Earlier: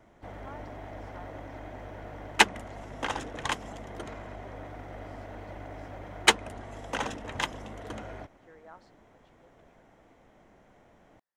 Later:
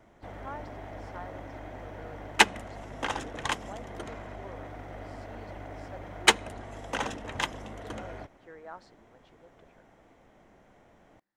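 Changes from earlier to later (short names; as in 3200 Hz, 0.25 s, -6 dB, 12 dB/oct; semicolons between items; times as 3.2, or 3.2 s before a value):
speech +6.0 dB; reverb: on, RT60 0.65 s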